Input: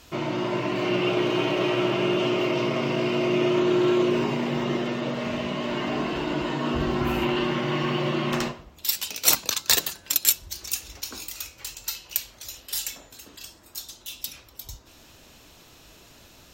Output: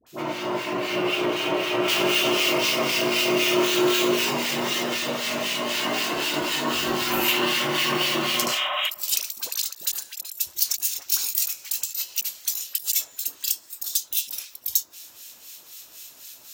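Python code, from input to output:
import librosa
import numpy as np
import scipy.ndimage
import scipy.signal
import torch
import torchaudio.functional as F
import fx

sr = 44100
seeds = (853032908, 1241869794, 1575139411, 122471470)

y = fx.law_mismatch(x, sr, coded='A')
y = scipy.signal.sosfilt(scipy.signal.butter(2, 51.0, 'highpass', fs=sr, output='sos'), y)
y = fx.riaa(y, sr, side='recording')
y = fx.spec_repair(y, sr, seeds[0], start_s=8.28, length_s=0.62, low_hz=560.0, high_hz=3900.0, source='before')
y = fx.high_shelf(y, sr, hz=2900.0, db=fx.steps((0.0, -8.5), (1.81, 5.0)))
y = fx.over_compress(y, sr, threshold_db=-23.0, ratio=-1.0)
y = fx.dispersion(y, sr, late='highs', ms=67.0, hz=920.0)
y = fx.harmonic_tremolo(y, sr, hz=3.9, depth_pct=70, crossover_hz=1600.0)
y = fx.echo_wet_bandpass(y, sr, ms=114, feedback_pct=61, hz=760.0, wet_db=-21.0)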